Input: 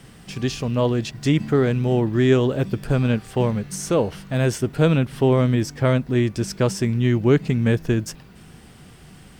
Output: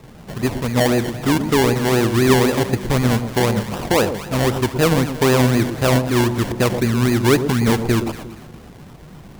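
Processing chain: dynamic EQ 150 Hz, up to -7 dB, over -34 dBFS, Q 2.9; in parallel at -1 dB: level quantiser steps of 12 dB; on the sum: decimation with a swept rate 28×, swing 60% 3.9 Hz; echo with dull and thin repeats by turns 0.117 s, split 920 Hz, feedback 55%, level -8 dB; warbling echo 80 ms, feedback 66%, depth 101 cents, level -21 dB

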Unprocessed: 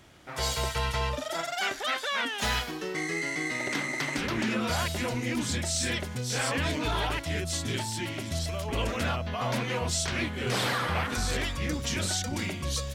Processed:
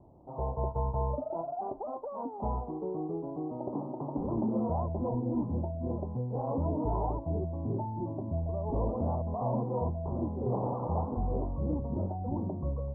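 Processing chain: steep low-pass 990 Hz 72 dB/oct

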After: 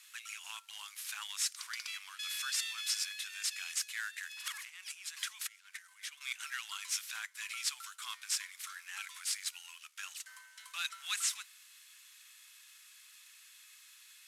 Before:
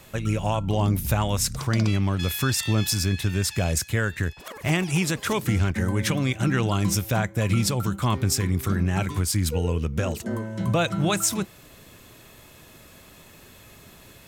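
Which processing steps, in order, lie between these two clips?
CVSD 64 kbps; 4.29–6.21 negative-ratio compressor -34 dBFS, ratio -1; Bessel high-pass 2200 Hz, order 8; gain -4.5 dB

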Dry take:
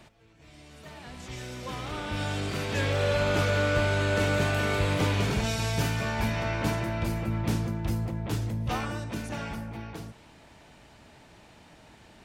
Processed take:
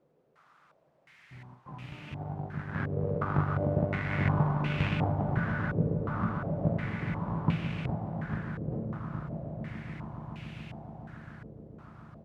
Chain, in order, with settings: half-waves squared off; bell 480 Hz -11.5 dB 0.31 oct; one-sided clip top -31.5 dBFS, bottom -13 dBFS; power-law curve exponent 2; HPF 64 Hz 12 dB/oct; doubler 23 ms -13 dB; swelling echo 0.142 s, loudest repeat 8, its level -14 dB; harmoniser -4 st -10 dB; gate with hold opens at -42 dBFS; added noise blue -44 dBFS; bell 150 Hz +15 dB 0.76 oct; stepped low-pass 2.8 Hz 480–2600 Hz; gain -4.5 dB

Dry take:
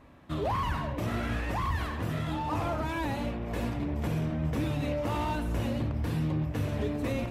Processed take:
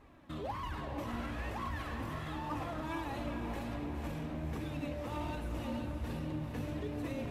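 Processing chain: limiter -28 dBFS, peak gain reduction 6.5 dB; flange 1.3 Hz, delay 2.3 ms, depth 1.9 ms, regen +47%; diffused feedback echo 0.474 s, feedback 55%, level -6 dB

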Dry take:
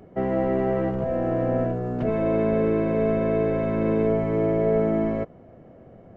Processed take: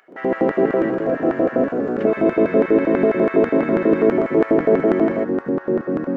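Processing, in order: LFO high-pass square 6.1 Hz 310–1600 Hz; echoes that change speed 0.123 s, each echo -3 st, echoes 2, each echo -6 dB; gain +4 dB

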